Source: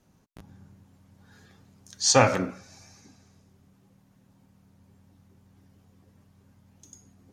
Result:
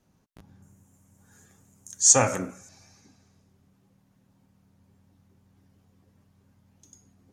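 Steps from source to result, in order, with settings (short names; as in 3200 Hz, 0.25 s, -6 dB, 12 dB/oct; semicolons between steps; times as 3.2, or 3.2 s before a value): 0.62–2.69 resonant high shelf 5700 Hz +9 dB, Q 3; gain -3.5 dB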